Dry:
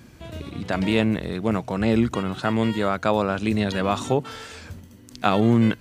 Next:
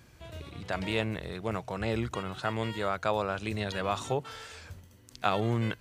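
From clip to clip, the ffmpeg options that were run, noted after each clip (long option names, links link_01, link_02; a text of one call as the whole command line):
ffmpeg -i in.wav -af "equalizer=frequency=240:width=1.4:gain=-10,volume=-6dB" out.wav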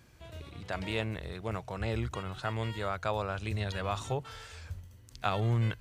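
ffmpeg -i in.wav -af "asubboost=boost=4.5:cutoff=110,volume=-3dB" out.wav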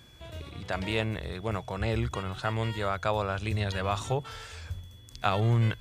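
ffmpeg -i in.wav -af "aeval=exprs='val(0)+0.000891*sin(2*PI*3400*n/s)':channel_layout=same,volume=4dB" out.wav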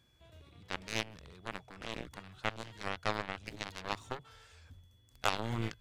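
ffmpeg -i in.wav -af "aeval=exprs='0.355*(cos(1*acos(clip(val(0)/0.355,-1,1)))-cos(1*PI/2))+0.0631*(cos(7*acos(clip(val(0)/0.355,-1,1)))-cos(7*PI/2))':channel_layout=same,volume=-2.5dB" out.wav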